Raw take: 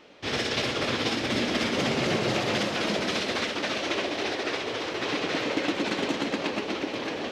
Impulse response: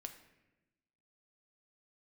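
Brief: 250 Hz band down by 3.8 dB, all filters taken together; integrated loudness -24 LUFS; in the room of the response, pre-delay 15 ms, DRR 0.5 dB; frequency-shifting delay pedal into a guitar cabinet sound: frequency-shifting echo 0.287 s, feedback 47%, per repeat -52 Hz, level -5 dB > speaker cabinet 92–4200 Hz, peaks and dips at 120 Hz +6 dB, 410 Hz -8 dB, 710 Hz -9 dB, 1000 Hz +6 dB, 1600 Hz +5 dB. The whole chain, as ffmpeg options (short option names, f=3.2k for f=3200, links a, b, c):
-filter_complex "[0:a]equalizer=f=250:t=o:g=-3.5,asplit=2[a][b];[1:a]atrim=start_sample=2205,adelay=15[c];[b][c]afir=irnorm=-1:irlink=0,volume=4dB[d];[a][d]amix=inputs=2:normalize=0,asplit=7[e][f][g][h][i][j][k];[f]adelay=287,afreqshift=-52,volume=-5dB[l];[g]adelay=574,afreqshift=-104,volume=-11.6dB[m];[h]adelay=861,afreqshift=-156,volume=-18.1dB[n];[i]adelay=1148,afreqshift=-208,volume=-24.7dB[o];[j]adelay=1435,afreqshift=-260,volume=-31.2dB[p];[k]adelay=1722,afreqshift=-312,volume=-37.8dB[q];[e][l][m][n][o][p][q]amix=inputs=7:normalize=0,highpass=92,equalizer=f=120:t=q:w=4:g=6,equalizer=f=410:t=q:w=4:g=-8,equalizer=f=710:t=q:w=4:g=-9,equalizer=f=1k:t=q:w=4:g=6,equalizer=f=1.6k:t=q:w=4:g=5,lowpass=f=4.2k:w=0.5412,lowpass=f=4.2k:w=1.3066"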